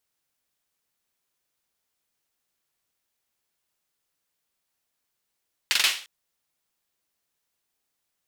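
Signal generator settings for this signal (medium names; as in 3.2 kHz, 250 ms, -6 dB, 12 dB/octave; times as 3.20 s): hand clap length 0.35 s, bursts 4, apart 43 ms, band 2.9 kHz, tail 0.40 s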